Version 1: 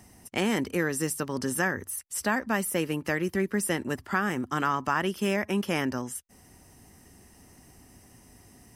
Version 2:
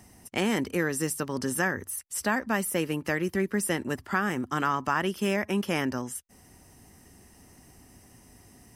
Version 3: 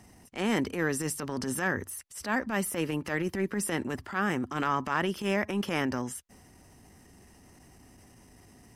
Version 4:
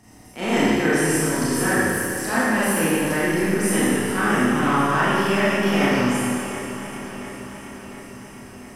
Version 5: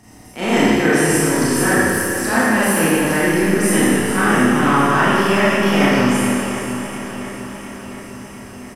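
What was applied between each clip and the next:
no audible change
treble shelf 8.5 kHz -8.5 dB; transient shaper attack -11 dB, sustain +3 dB
on a send: shuffle delay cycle 702 ms, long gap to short 1.5:1, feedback 58%, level -13 dB; on the sum: Schroeder reverb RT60 2 s, combs from 25 ms, DRR -10 dB
delay 461 ms -11.5 dB; trim +4.5 dB

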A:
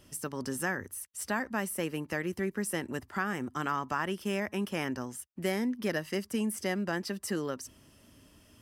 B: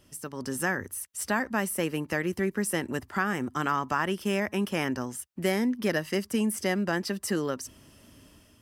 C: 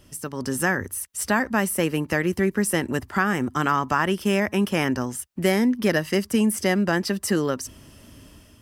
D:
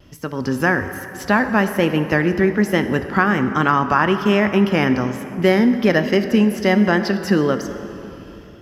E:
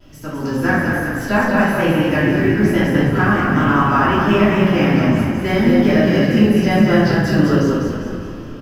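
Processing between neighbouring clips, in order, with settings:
level rider gain up to 6.5 dB; trim -2 dB
bass shelf 100 Hz +6 dB; trim +5.5 dB
boxcar filter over 5 samples; plate-style reverb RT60 3.2 s, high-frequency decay 0.55×, DRR 8.5 dB; vibrato 1.2 Hz 36 cents; trim +5.5 dB
companding laws mixed up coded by mu; on a send: frequency-shifting echo 201 ms, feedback 49%, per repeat -31 Hz, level -4 dB; on the sum: simulated room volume 220 m³, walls mixed, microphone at 2.9 m; trim -10 dB

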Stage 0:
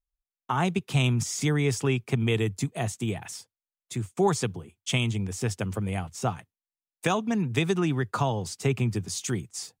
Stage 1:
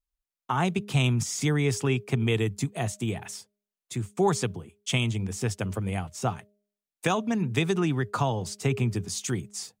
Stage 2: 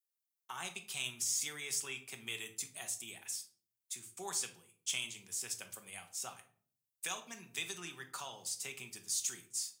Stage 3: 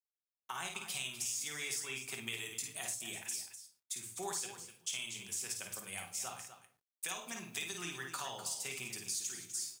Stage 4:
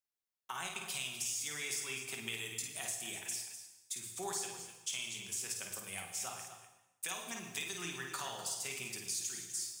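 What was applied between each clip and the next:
de-hum 205.3 Hz, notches 3
differentiator; saturation -22 dBFS, distortion -25 dB; simulated room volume 470 m³, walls furnished, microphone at 1.1 m; trim -1 dB
compression 5:1, threshold -42 dBFS, peak gain reduction 10 dB; bit crusher 12-bit; on a send: loudspeakers at several distances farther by 18 m -6 dB, 86 m -11 dB; on the sum: trim +4.5 dB
plate-style reverb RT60 0.92 s, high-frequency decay 0.95×, pre-delay 85 ms, DRR 9 dB

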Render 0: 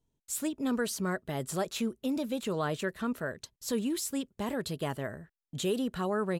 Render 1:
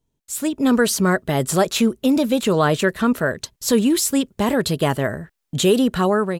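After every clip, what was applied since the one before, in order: level rider gain up to 10 dB; trim +4.5 dB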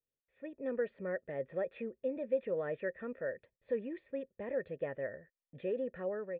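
dynamic bell 1.4 kHz, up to +5 dB, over -39 dBFS, Q 5.4; cascade formant filter e; trim -8.5 dB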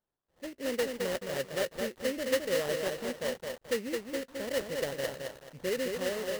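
sample-rate reducer 2.4 kHz, jitter 20%; bit-crushed delay 215 ms, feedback 35%, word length 9-bit, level -4 dB; trim +3.5 dB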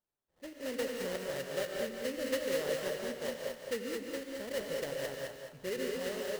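gated-style reverb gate 220 ms rising, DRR 2.5 dB; trim -5.5 dB

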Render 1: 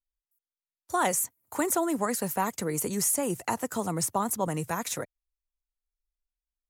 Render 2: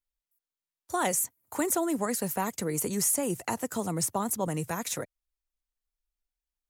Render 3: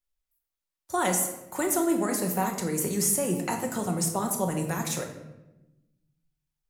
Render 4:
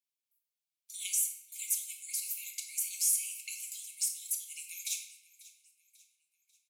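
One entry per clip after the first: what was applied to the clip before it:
dynamic bell 1.1 kHz, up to -4 dB, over -39 dBFS, Q 1
simulated room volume 410 m³, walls mixed, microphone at 1 m
brick-wall FIR high-pass 2.1 kHz; feedback delay 542 ms, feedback 44%, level -20 dB; trim -2.5 dB

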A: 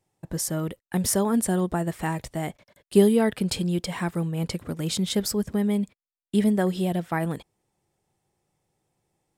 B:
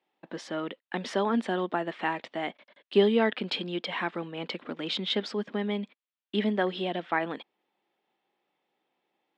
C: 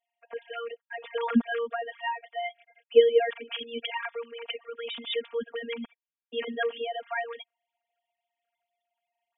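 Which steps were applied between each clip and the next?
elliptic band-pass 240–3400 Hz, stop band 70 dB; tilt shelf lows -4.5 dB, about 1.1 kHz; trim +1.5 dB
formants replaced by sine waves; robot voice 233 Hz; trim +3 dB

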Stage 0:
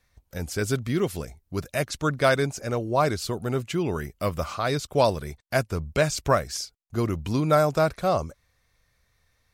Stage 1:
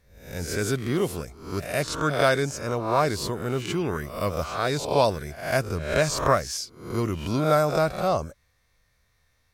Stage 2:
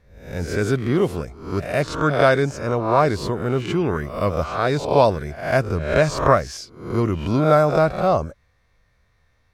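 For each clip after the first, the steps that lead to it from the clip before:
reverse spectral sustain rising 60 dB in 0.55 s; trim -1.5 dB
low-pass 2 kHz 6 dB/octave; trim +6 dB

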